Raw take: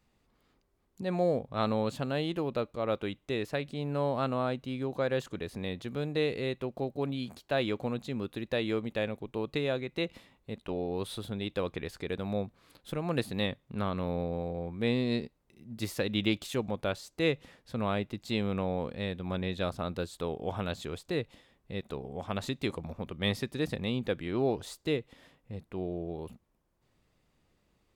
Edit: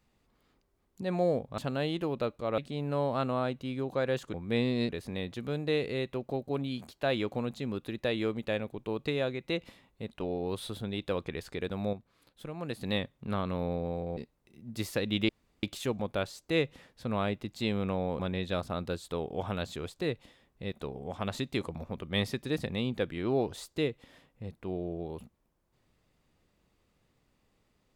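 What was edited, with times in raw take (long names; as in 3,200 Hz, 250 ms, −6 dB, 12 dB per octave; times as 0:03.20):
0:01.58–0:01.93: remove
0:02.93–0:03.61: remove
0:12.41–0:13.29: clip gain −6.5 dB
0:14.65–0:15.20: move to 0:05.37
0:16.32: splice in room tone 0.34 s
0:18.88–0:19.28: remove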